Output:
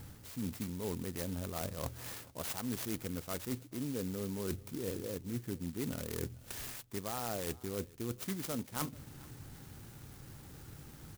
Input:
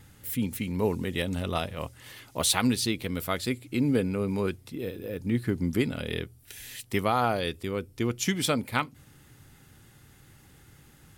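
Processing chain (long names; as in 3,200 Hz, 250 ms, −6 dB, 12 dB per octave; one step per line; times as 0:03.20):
high-shelf EQ 12,000 Hz −10.5 dB
reversed playback
downward compressor 12 to 1, threshold −39 dBFS, peak gain reduction 19.5 dB
reversed playback
single-tap delay 435 ms −22.5 dB
converter with an unsteady clock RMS 0.12 ms
level +4 dB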